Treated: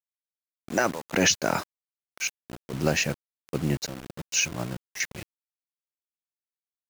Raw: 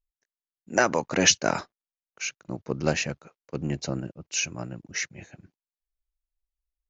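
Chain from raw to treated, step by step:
brickwall limiter −13 dBFS, peak gain reduction 8 dB
gate pattern "x.xx.xxx.x..x" 66 BPM −12 dB
bit reduction 7 bits
level +3 dB

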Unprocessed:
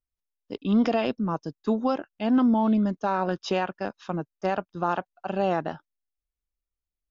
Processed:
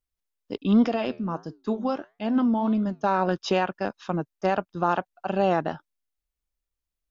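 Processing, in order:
0:00.84–0:03.04: flanger 1.5 Hz, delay 7.5 ms, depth 5.2 ms, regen −82%
level +2.5 dB

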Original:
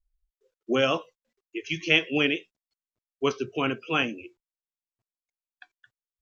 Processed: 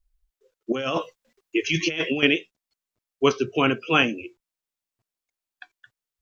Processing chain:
0:00.72–0:02.23: compressor whose output falls as the input rises −31 dBFS, ratio −1
level +6 dB

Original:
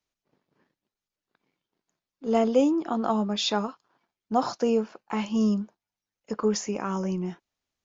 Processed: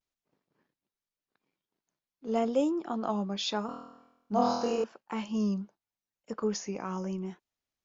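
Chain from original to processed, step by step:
pitch vibrato 0.85 Hz 73 cents
0:03.66–0:04.84: flutter between parallel walls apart 4.2 metres, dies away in 0.87 s
level −6 dB

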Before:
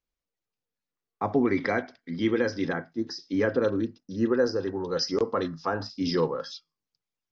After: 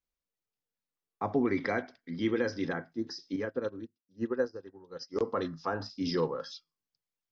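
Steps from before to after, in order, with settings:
0:03.36–0:05.16: expander for the loud parts 2.5 to 1, over −38 dBFS
level −4.5 dB

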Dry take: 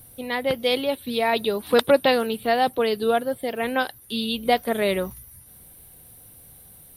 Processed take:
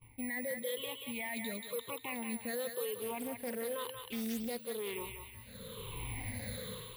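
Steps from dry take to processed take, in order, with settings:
rippled gain that drifts along the octave scale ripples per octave 0.69, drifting −1 Hz, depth 21 dB
EQ curve with evenly spaced ripples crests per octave 0.94, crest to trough 12 dB
bad sample-rate conversion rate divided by 4×, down filtered, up zero stuff
automatic gain control gain up to 12 dB
noise gate −47 dBFS, range −22 dB
high shelf with overshoot 4,400 Hz −12 dB, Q 3
brickwall limiter −23 dBFS, peak gain reduction 15 dB
feedback echo with a high-pass in the loop 183 ms, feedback 51%, high-pass 940 Hz, level −4 dB
0:02.95–0:04.95: highs frequency-modulated by the lows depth 0.32 ms
level −5.5 dB

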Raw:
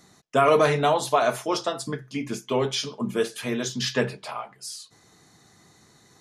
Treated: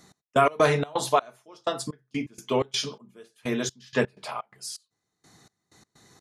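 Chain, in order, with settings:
gate pattern "x..x.xx.xx....x" 126 BPM −24 dB

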